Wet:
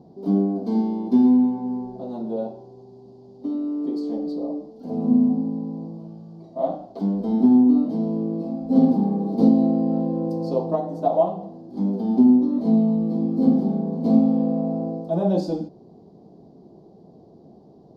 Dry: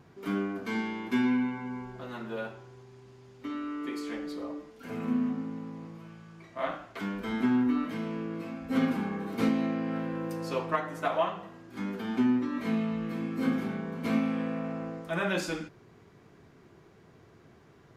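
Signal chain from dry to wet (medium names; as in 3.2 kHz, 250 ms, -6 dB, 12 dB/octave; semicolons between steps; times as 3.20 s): FFT filter 120 Hz 0 dB, 190 Hz +13 dB, 410 Hz +8 dB, 760 Hz +11 dB, 1.4 kHz -21 dB, 2.3 kHz -26 dB, 4.5 kHz +1 dB, 7.1 kHz -12 dB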